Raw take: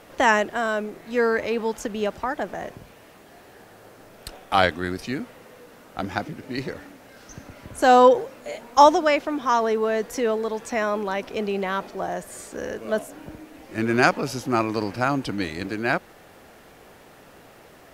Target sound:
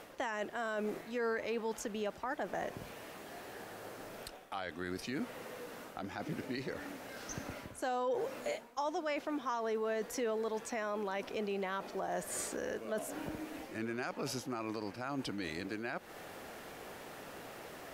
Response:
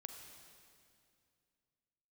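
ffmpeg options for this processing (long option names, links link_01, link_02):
-af "areverse,acompressor=threshold=-29dB:ratio=10,areverse,alimiter=level_in=4dB:limit=-24dB:level=0:latency=1:release=198,volume=-4dB,lowshelf=frequency=140:gain=-7.5,volume=1dB"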